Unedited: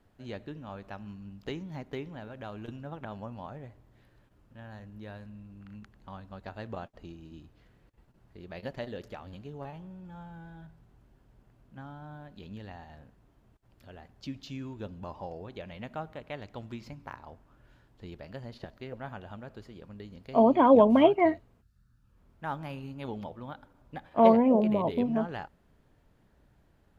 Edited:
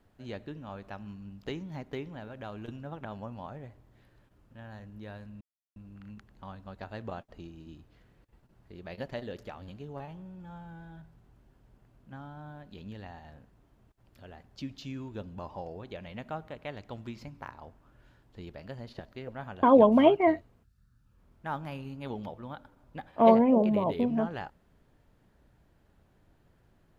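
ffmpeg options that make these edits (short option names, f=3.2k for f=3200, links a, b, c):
-filter_complex "[0:a]asplit=3[a][b][c];[a]atrim=end=5.41,asetpts=PTS-STARTPTS,afade=t=out:st=5.406:d=0.004:c=hsin,apad=pad_dur=0.35[d];[b]atrim=start=5.41:end=19.282,asetpts=PTS-STARTPTS,afade=t=in:d=0.004:c=hsin[e];[c]atrim=start=20.608[f];[d][e]concat=n=2:v=0:a=1[g];[g][f]acrossfade=d=0.004:c1=hsin:c2=hsin"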